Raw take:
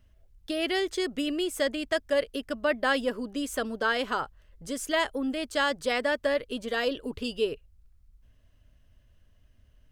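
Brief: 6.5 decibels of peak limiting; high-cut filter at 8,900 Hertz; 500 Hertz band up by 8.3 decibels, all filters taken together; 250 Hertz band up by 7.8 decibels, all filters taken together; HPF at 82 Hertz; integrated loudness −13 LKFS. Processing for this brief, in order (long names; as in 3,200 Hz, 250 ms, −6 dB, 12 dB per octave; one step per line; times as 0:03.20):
high-pass filter 82 Hz
low-pass filter 8,900 Hz
parametric band 250 Hz +6.5 dB
parametric band 500 Hz +8.5 dB
level +12 dB
brickwall limiter −2.5 dBFS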